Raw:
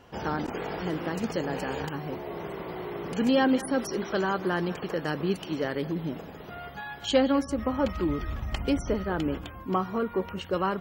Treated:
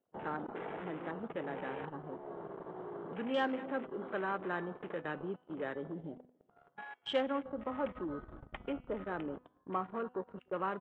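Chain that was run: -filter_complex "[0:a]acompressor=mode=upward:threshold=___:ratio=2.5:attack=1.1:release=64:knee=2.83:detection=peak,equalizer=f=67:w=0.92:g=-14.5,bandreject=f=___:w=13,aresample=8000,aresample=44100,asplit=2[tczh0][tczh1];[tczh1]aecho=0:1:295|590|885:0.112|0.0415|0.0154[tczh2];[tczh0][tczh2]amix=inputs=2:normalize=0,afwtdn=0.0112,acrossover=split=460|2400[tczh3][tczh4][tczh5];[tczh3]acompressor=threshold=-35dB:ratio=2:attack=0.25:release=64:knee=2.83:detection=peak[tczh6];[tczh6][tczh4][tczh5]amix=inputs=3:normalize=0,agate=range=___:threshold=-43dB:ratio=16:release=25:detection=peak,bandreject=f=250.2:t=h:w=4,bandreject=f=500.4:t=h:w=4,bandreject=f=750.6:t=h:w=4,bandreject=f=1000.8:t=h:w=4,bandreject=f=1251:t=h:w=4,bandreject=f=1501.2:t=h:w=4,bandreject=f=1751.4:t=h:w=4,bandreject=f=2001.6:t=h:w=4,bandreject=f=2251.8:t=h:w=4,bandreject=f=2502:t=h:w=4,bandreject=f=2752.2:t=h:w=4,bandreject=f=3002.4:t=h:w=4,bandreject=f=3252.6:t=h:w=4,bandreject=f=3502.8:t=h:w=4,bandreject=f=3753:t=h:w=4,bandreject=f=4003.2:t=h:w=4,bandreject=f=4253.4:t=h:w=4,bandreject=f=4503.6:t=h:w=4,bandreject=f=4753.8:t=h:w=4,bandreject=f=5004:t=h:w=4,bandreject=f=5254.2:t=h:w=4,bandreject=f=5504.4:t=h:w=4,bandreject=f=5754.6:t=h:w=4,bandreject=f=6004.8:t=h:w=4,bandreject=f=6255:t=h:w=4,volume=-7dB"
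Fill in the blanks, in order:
-40dB, 2500, -22dB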